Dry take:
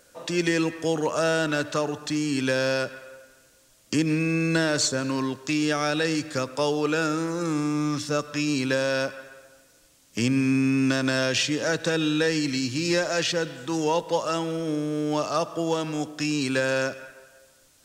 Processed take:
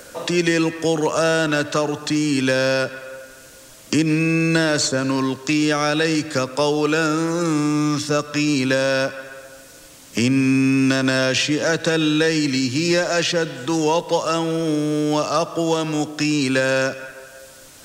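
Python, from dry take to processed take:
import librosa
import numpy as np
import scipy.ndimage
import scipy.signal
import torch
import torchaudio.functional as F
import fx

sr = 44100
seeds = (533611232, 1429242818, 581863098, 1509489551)

y = fx.band_squash(x, sr, depth_pct=40)
y = F.gain(torch.from_numpy(y), 5.5).numpy()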